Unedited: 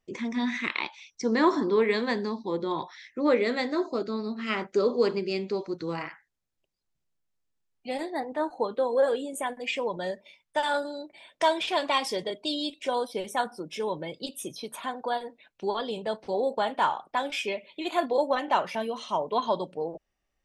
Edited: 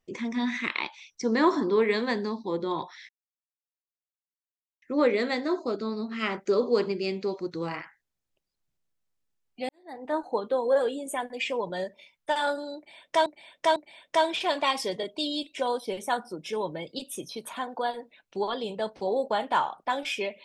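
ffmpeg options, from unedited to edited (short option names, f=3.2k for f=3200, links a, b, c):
-filter_complex "[0:a]asplit=5[a][b][c][d][e];[a]atrim=end=3.09,asetpts=PTS-STARTPTS,afade=t=out:st=3.086:d=0.004:c=hsin,apad=pad_dur=1.73[f];[b]atrim=start=3.09:end=7.96,asetpts=PTS-STARTPTS,afade=t=in:d=0.004:c=hsin,afade=t=out:st=4.866:d=0.004:c=hsin[g];[c]atrim=start=7.96:end=11.532,asetpts=PTS-STARTPTS,afade=t=in:d=0.41:c=qua[h];[d]atrim=start=11.028:end=11.532[i];[e]atrim=start=11.028[j];[f][g][h]concat=n=3:v=0:a=1[k];[k][i]acrossfade=d=0.004:c1=hsin:c2=hsin[l];[l][j]acrossfade=d=0.004:c1=hsin:c2=hsin"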